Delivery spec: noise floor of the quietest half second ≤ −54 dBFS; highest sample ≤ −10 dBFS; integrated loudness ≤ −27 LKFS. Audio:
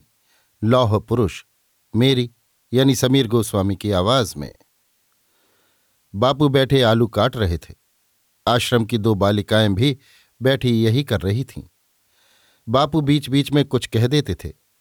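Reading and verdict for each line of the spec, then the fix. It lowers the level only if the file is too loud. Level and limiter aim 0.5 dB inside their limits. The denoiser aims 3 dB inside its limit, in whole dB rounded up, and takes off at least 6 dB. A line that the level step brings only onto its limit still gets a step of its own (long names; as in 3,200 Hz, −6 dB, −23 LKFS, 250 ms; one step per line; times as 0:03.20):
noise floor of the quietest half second −65 dBFS: in spec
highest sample −4.0 dBFS: out of spec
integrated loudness −19.0 LKFS: out of spec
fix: level −8.5 dB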